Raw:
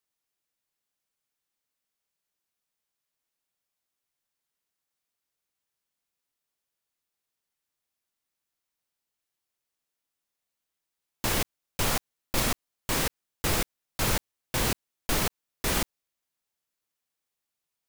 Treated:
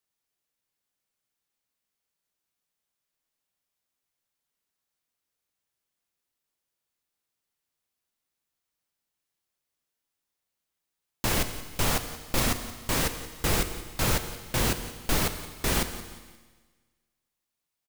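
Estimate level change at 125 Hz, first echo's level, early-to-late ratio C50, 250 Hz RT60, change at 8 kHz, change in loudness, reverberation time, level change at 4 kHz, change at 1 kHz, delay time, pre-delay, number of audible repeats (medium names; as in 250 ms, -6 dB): +2.5 dB, -15.5 dB, 10.5 dB, 1.4 s, +0.5 dB, +1.0 dB, 1.4 s, +0.5 dB, +1.0 dB, 175 ms, 8 ms, 3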